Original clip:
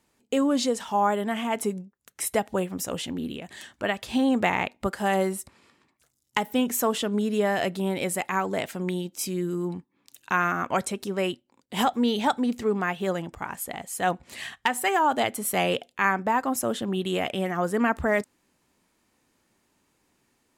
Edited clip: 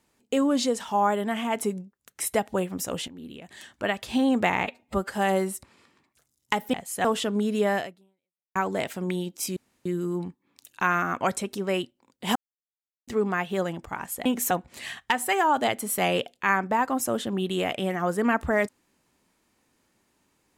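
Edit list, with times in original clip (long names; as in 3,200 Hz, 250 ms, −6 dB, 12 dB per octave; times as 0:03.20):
0:03.08–0:03.85: fade in, from −15.5 dB
0:04.64–0:04.95: time-stretch 1.5×
0:06.58–0:06.83: swap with 0:13.75–0:14.06
0:07.56–0:08.34: fade out exponential
0:09.35: splice in room tone 0.29 s
0:11.85–0:12.57: silence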